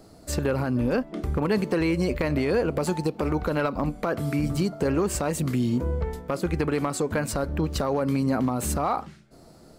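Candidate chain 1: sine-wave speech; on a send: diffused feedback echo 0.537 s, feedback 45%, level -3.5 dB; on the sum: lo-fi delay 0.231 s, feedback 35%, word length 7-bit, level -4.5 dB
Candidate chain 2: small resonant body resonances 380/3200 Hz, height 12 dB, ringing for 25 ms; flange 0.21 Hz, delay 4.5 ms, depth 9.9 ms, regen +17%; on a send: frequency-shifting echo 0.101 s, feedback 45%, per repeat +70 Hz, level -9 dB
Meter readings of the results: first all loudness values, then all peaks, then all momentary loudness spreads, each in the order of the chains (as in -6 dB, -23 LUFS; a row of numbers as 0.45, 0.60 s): -23.0, -23.5 LUFS; -8.5, -7.0 dBFS; 5, 8 LU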